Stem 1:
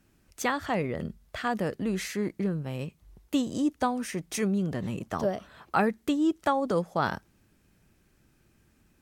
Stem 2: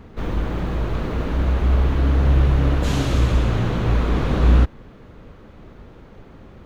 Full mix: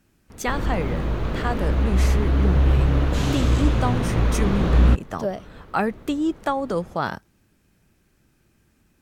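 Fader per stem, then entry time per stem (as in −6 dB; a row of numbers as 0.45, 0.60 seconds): +2.0, −1.5 decibels; 0.00, 0.30 seconds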